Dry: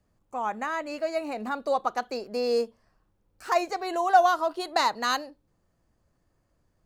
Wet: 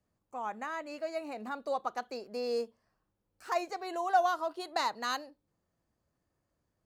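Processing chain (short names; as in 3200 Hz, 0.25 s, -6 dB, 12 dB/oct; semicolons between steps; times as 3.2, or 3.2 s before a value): HPF 81 Hz 6 dB/oct; gain -7.5 dB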